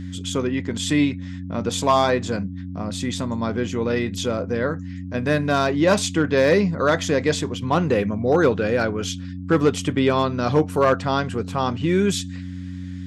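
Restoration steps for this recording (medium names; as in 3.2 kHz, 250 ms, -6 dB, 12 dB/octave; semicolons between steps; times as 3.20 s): clip repair -8.5 dBFS; de-hum 91.3 Hz, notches 3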